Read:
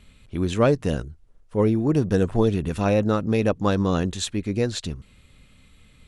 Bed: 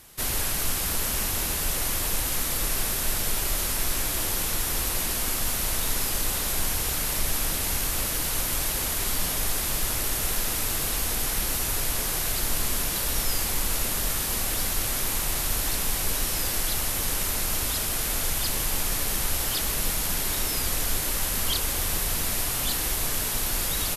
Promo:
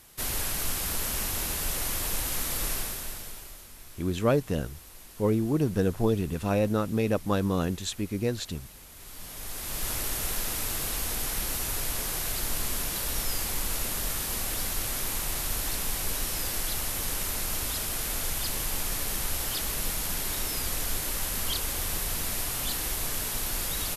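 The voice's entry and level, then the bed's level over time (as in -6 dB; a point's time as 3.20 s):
3.65 s, -5.0 dB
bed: 2.71 s -3.5 dB
3.69 s -22 dB
8.89 s -22 dB
9.89 s -4 dB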